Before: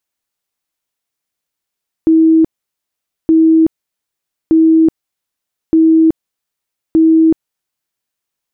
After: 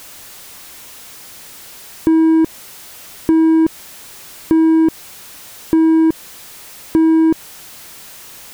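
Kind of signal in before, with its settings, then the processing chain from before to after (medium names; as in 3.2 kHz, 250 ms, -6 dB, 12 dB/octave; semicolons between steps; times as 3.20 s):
tone bursts 322 Hz, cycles 121, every 1.22 s, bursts 5, -5 dBFS
jump at every zero crossing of -32.5 dBFS; waveshaping leveller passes 1; compression 3:1, threshold -11 dBFS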